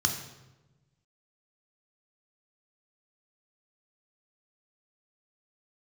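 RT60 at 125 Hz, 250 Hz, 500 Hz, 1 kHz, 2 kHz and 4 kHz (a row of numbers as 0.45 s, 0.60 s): 1.7 s, 1.4 s, 1.2 s, 1.0 s, 0.85 s, 0.80 s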